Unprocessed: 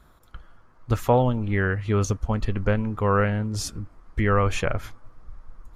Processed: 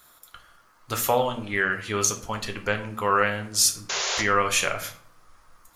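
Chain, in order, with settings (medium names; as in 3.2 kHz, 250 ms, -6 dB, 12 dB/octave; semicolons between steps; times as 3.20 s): tilt EQ +4.5 dB/octave; painted sound noise, 3.89–4.22 s, 350–7200 Hz -28 dBFS; reverberation RT60 0.50 s, pre-delay 6 ms, DRR 5 dB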